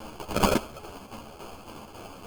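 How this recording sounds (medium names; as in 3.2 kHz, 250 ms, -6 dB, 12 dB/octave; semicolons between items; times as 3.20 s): a quantiser's noise floor 8-bit, dither triangular; tremolo saw down 3.6 Hz, depth 60%; aliases and images of a low sample rate 1.9 kHz, jitter 0%; a shimmering, thickened sound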